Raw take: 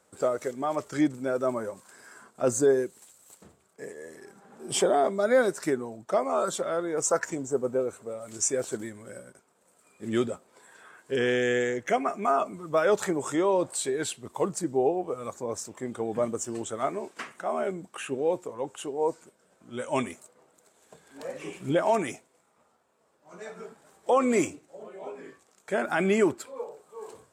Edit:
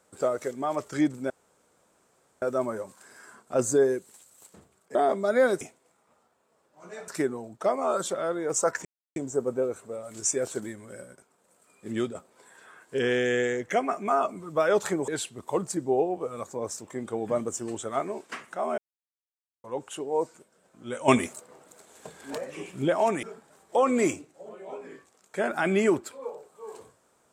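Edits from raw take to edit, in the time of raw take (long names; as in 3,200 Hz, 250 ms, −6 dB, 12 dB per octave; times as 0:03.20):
0:01.30: splice in room tone 1.12 s
0:03.83–0:04.90: remove
0:07.33: splice in silence 0.31 s
0:10.06–0:10.32: fade out, to −7.5 dB
0:13.25–0:13.95: remove
0:17.65–0:18.51: silence
0:19.95–0:21.25: clip gain +8.5 dB
0:22.10–0:23.57: move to 0:05.56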